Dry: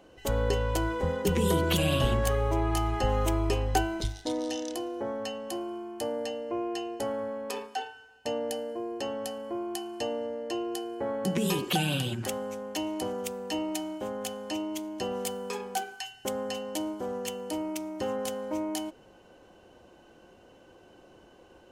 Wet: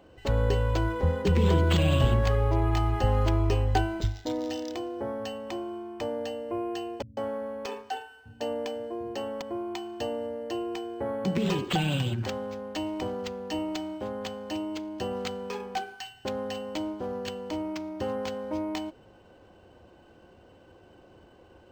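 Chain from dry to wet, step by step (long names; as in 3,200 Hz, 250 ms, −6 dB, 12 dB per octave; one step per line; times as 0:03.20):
parametric band 87 Hz +8.5 dB 1.1 octaves
0:07.02–0:09.42: multiband delay without the direct sound lows, highs 150 ms, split 160 Hz
linearly interpolated sample-rate reduction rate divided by 4×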